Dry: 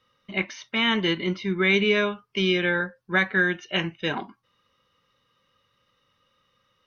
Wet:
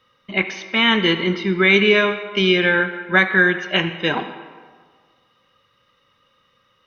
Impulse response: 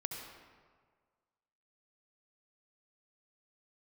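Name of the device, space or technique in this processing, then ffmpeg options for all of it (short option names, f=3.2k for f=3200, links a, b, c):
filtered reverb send: -filter_complex "[0:a]asplit=2[a][b];[b]highpass=f=300:p=1,lowpass=5k[c];[1:a]atrim=start_sample=2205[d];[c][d]afir=irnorm=-1:irlink=0,volume=-3dB[e];[a][e]amix=inputs=2:normalize=0,volume=3.5dB"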